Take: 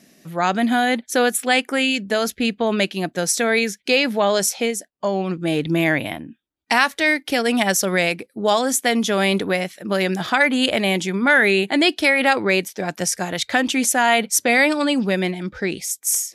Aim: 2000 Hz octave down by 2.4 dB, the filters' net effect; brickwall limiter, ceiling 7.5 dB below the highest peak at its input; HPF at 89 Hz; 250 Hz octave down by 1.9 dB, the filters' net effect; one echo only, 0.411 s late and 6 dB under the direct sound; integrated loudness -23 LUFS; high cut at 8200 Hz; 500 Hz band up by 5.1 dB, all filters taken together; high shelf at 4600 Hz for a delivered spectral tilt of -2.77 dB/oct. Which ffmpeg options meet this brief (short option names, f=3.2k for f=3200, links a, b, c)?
-af "highpass=89,lowpass=8.2k,equalizer=f=250:t=o:g=-4.5,equalizer=f=500:t=o:g=7.5,equalizer=f=2k:t=o:g=-4.5,highshelf=f=4.6k:g=6.5,alimiter=limit=-9dB:level=0:latency=1,aecho=1:1:411:0.501,volume=-4dB"